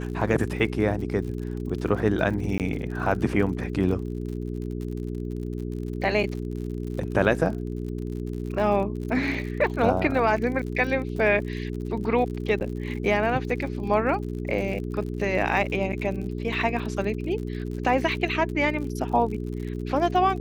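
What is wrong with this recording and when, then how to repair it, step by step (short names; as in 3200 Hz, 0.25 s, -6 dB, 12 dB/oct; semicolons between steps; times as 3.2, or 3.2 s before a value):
crackle 59/s -34 dBFS
hum 60 Hz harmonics 7 -31 dBFS
2.58–2.6 gap 18 ms
12.6–12.61 gap 9.5 ms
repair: de-click; de-hum 60 Hz, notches 7; interpolate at 2.58, 18 ms; interpolate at 12.6, 9.5 ms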